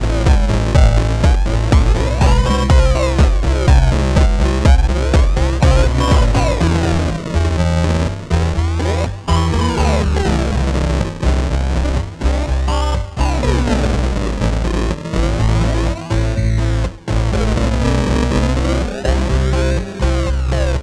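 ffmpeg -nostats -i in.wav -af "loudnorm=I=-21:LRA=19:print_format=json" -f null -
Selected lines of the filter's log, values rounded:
"input_i" : "-16.0",
"input_tp" : "-1.5",
"input_lra" : "3.7",
"input_thresh" : "-26.0",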